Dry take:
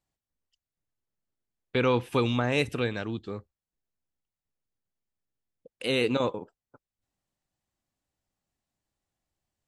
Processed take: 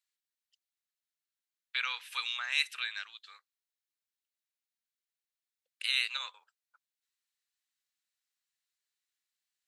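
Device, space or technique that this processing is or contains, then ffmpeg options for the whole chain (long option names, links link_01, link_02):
headphones lying on a table: -af "highpass=frequency=1500:width=0.5412,highpass=frequency=1500:width=1.3066,equalizer=frequency=4000:width_type=o:width=0.25:gain=5"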